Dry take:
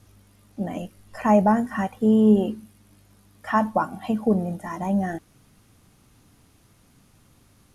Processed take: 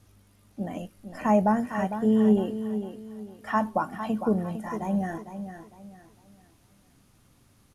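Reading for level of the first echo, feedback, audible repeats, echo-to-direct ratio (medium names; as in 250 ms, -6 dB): -10.0 dB, 32%, 3, -9.5 dB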